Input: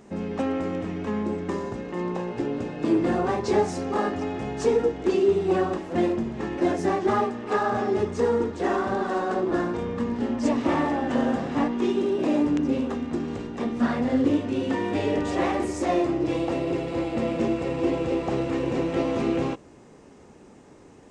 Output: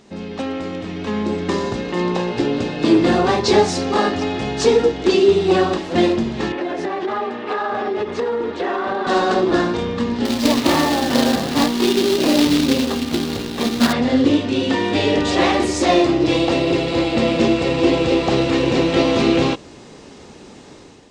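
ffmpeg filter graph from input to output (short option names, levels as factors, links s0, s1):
-filter_complex "[0:a]asettb=1/sr,asplit=3[s0][s1][s2];[s0]atrim=end=6.524[s3];[s1]atrim=start=6.52:end=9.07,asetpts=PTS-STARTPTS,afade=t=in:d=0.004:c=qsin,afade=t=out:st=2.546:d=0.004:c=qsin,acrossover=split=270 3100:gain=0.224 1 0.158[s4][s5][s6];[s4][s5][s6]amix=inputs=3:normalize=0,acompressor=threshold=0.0447:ratio=10:attack=3.2:release=140:knee=1:detection=peak[s7];[s2]atrim=start=9.066[s8];[s3][s7]acrossfade=d=0.004:c1=hsin:c2=qsin[s9];[s9][s8]acrossfade=d=0.004:c1=qsin:c2=hsin,asettb=1/sr,asplit=3[s10][s11][s12];[s10]atrim=end=10.254[s13];[s11]atrim=start=10.25:end=13.93,asetpts=PTS-STARTPTS,afade=t=in:d=0.004:c=qsin,afade=t=out:st=3.676:d=0.004:c=qsin,aemphasis=mode=reproduction:type=cd,acrusher=bits=3:mode=log:mix=0:aa=0.000001[s14];[s12]atrim=start=13.926[s15];[s13][s14]acrossfade=d=0.004:c1=hsin:c2=qsin[s16];[s16][s15]acrossfade=d=0.004:c1=qsin:c2=hsin,equalizer=f=4000:w=1.1:g=12.5,dynaudnorm=f=830:g=3:m=3.16"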